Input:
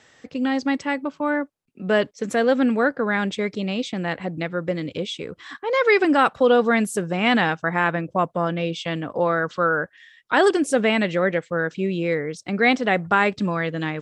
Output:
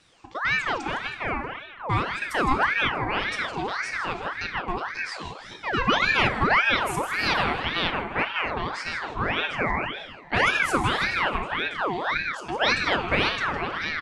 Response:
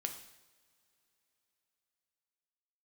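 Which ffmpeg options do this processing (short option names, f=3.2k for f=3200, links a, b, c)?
-filter_complex "[0:a]asplit=6[a][b][c][d][e][f];[b]adelay=159,afreqshift=-36,volume=-9.5dB[g];[c]adelay=318,afreqshift=-72,volume=-16.6dB[h];[d]adelay=477,afreqshift=-108,volume=-23.8dB[i];[e]adelay=636,afreqshift=-144,volume=-30.9dB[j];[f]adelay=795,afreqshift=-180,volume=-38dB[k];[a][g][h][i][j][k]amix=inputs=6:normalize=0[l];[1:a]atrim=start_sample=2205,afade=t=out:st=0.38:d=0.01,atrim=end_sample=17199[m];[l][m]afir=irnorm=-1:irlink=0,aeval=exprs='val(0)*sin(2*PI*1300*n/s+1300*0.6/1.8*sin(2*PI*1.8*n/s))':c=same,volume=-1.5dB"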